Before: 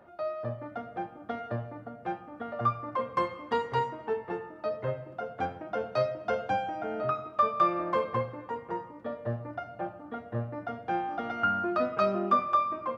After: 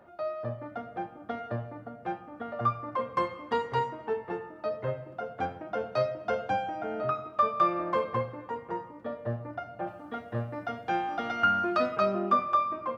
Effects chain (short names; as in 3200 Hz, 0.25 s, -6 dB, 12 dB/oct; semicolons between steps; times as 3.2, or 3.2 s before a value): 9.87–11.97 high shelf 2300 Hz +11 dB